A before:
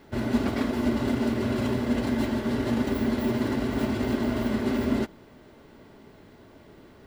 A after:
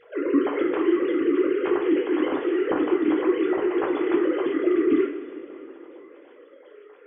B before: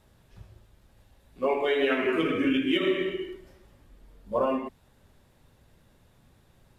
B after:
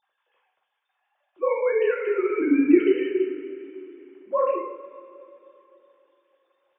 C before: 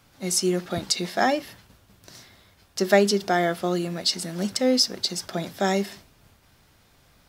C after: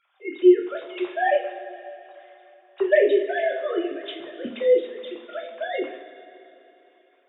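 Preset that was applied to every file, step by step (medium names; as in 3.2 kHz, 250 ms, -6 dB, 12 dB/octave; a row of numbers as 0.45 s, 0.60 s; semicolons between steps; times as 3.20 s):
formants replaced by sine waves; two-slope reverb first 0.41 s, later 3.3 s, from -16 dB, DRR -0.5 dB; normalise loudness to -23 LUFS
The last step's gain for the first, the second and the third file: 0.0 dB, +1.5 dB, -3.0 dB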